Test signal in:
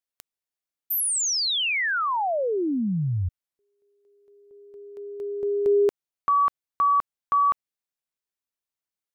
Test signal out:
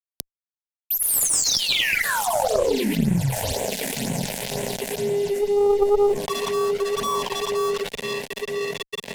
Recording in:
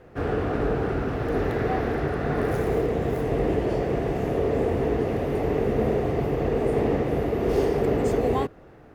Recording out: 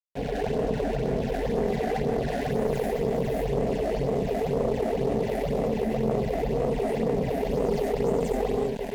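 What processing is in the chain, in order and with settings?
on a send: diffused feedback echo 1.06 s, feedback 59%, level -15.5 dB; on the sum: non-linear reverb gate 0.26 s rising, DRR -5 dB; flange 1 Hz, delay 7 ms, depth 9.8 ms, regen -84%; dynamic EQ 400 Hz, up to +3 dB, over -34 dBFS, Q 7.2; phaser stages 8, 2 Hz, lowest notch 130–4900 Hz; crossover distortion -39.5 dBFS; fixed phaser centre 330 Hz, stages 6; added harmonics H 2 -11 dB, 3 -18 dB, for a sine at -9 dBFS; fast leveller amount 70%; gain -1 dB

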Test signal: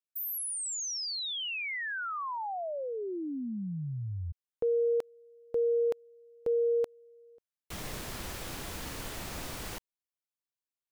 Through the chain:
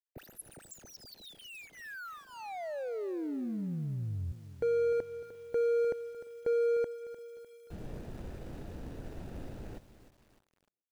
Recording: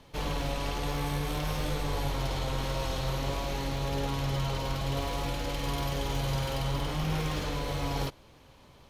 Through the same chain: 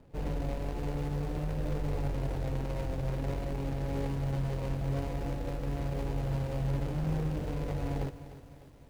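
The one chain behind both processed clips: median filter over 41 samples; tape echo 0.345 s, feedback 20%, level -23.5 dB, low-pass 2100 Hz; lo-fi delay 0.302 s, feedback 55%, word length 9-bit, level -13.5 dB

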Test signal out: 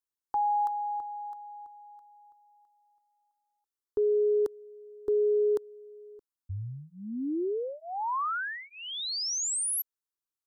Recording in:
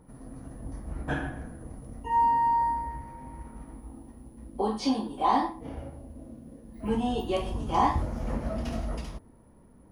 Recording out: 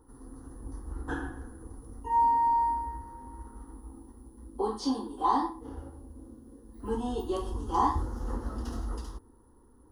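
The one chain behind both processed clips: fixed phaser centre 630 Hz, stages 6

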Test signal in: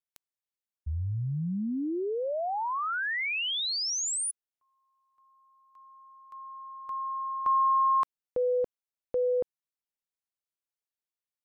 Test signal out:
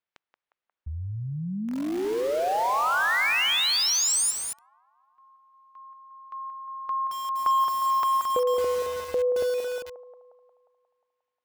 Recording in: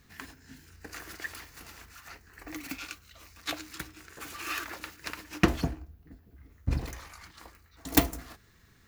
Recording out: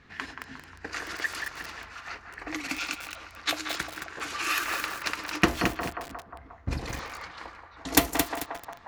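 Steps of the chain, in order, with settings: narrowing echo 0.178 s, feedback 67%, band-pass 920 Hz, level -6.5 dB; in parallel at +1 dB: compressor 12:1, threshold -36 dBFS; on the sum: low shelf 300 Hz -9 dB; low-pass opened by the level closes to 2600 Hz, open at -27 dBFS; lo-fi delay 0.22 s, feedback 35%, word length 6-bit, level -5 dB; gain +3 dB

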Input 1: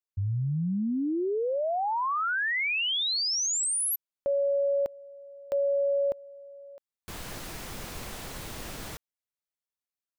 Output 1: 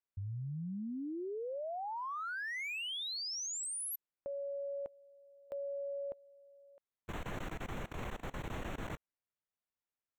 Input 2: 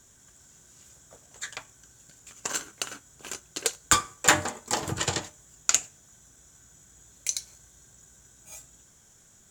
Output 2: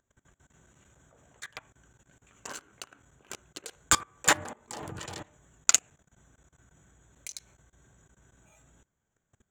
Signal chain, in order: Wiener smoothing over 9 samples; level quantiser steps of 21 dB; gain +2 dB

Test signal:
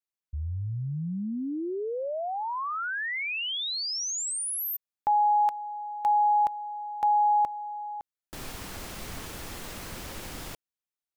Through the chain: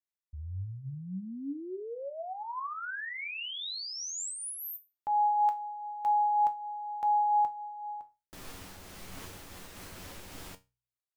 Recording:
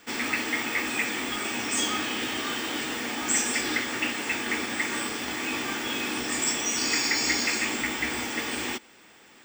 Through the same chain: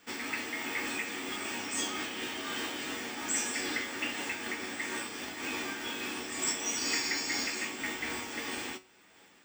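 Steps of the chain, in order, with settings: resonator 93 Hz, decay 0.25 s, harmonics all, mix 70%; de-hum 61.8 Hz, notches 2; noise-modulated level, depth 55%; gain +1.5 dB

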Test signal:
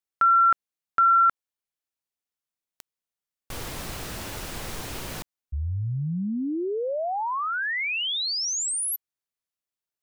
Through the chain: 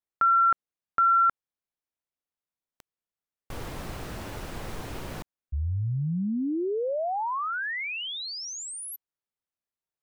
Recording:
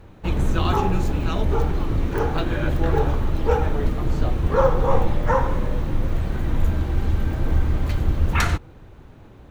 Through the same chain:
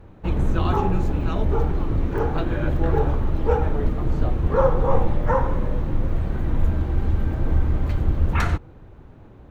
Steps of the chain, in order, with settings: high shelf 2400 Hz -10.5 dB

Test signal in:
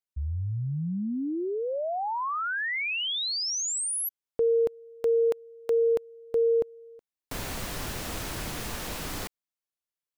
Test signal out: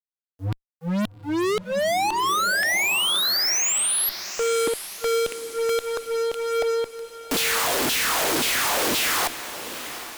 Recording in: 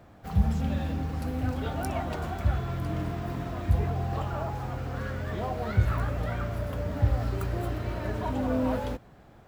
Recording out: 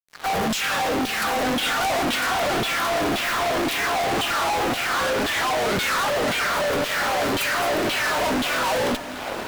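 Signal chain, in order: LFO high-pass saw down 1.9 Hz 230–3500 Hz; fuzz box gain 51 dB, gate -55 dBFS; diffused feedback echo 0.798 s, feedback 47%, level -12 dB; gain -8.5 dB

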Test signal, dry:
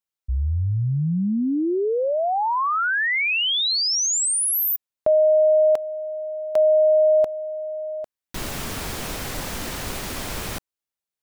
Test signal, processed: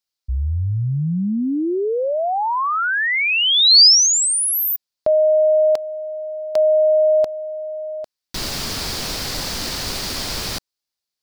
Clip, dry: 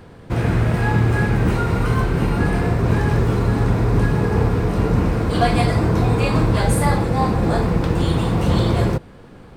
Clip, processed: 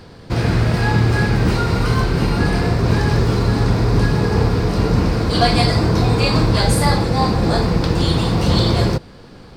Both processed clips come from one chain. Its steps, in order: bell 4700 Hz +12.5 dB 0.74 oct; gain +1.5 dB

